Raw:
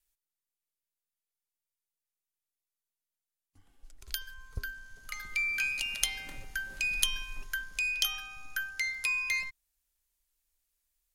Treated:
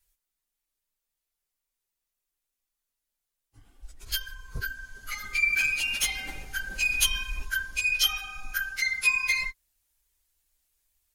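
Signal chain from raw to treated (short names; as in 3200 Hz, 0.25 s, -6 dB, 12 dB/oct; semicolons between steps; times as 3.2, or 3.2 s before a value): phase scrambler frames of 50 ms; 5.49–6.99 overloaded stage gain 26 dB; gain +6 dB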